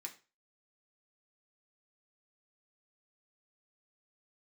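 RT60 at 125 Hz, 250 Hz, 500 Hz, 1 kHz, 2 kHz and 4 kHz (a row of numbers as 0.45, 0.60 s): 0.35, 0.30, 0.35, 0.30, 0.30, 0.30 s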